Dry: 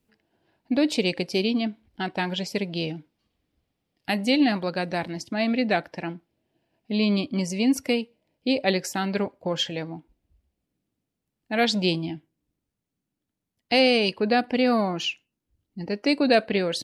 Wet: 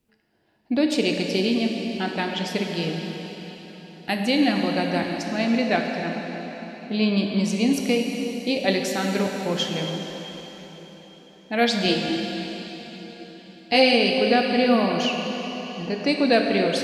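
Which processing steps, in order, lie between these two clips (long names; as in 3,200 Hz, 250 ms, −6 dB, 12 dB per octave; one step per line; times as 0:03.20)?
0:11.84–0:13.93: double-tracking delay 15 ms −2.5 dB
dense smooth reverb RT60 4.5 s, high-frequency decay 0.95×, DRR 1.5 dB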